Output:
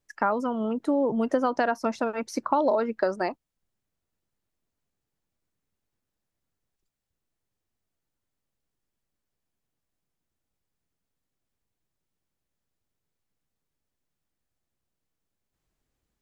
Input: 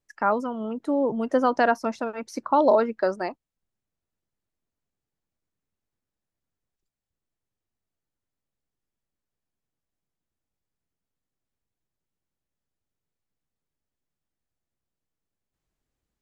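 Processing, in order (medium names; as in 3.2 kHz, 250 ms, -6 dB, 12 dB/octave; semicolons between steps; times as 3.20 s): compression 6:1, threshold -23 dBFS, peak gain reduction 9 dB; trim +3 dB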